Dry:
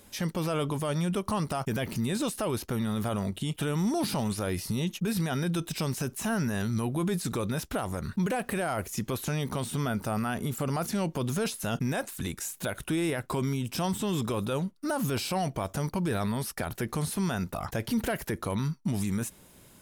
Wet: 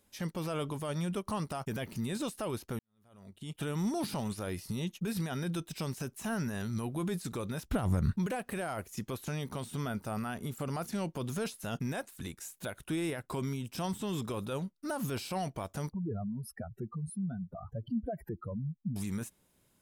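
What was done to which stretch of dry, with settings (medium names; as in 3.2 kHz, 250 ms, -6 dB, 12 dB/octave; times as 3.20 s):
2.79–3.60 s: fade in quadratic
7.65–8.17 s: tone controls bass +12 dB, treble -2 dB
15.92–18.96 s: spectral contrast enhancement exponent 3.2
whole clip: upward expansion 1.5:1, over -48 dBFS; trim -3 dB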